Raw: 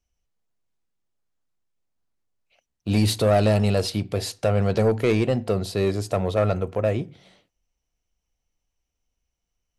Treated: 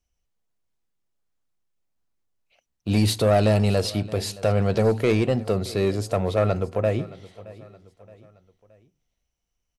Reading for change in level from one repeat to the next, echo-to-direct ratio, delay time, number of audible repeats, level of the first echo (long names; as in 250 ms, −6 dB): −6.5 dB, −19.0 dB, 621 ms, 3, −20.0 dB